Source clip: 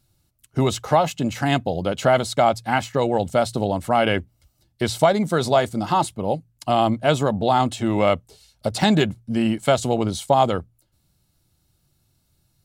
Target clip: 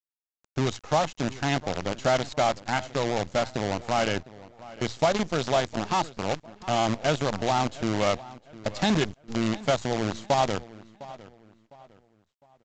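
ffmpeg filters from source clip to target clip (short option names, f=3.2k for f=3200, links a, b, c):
-filter_complex "[0:a]acrusher=bits=4:dc=4:mix=0:aa=0.000001,asplit=2[a][b];[b]adelay=706,lowpass=f=3.6k:p=1,volume=-18.5dB,asplit=2[c][d];[d]adelay=706,lowpass=f=3.6k:p=1,volume=0.35,asplit=2[e][f];[f]adelay=706,lowpass=f=3.6k:p=1,volume=0.35[g];[a][c][e][g]amix=inputs=4:normalize=0,volume=-6.5dB" -ar 16000 -c:a pcm_mulaw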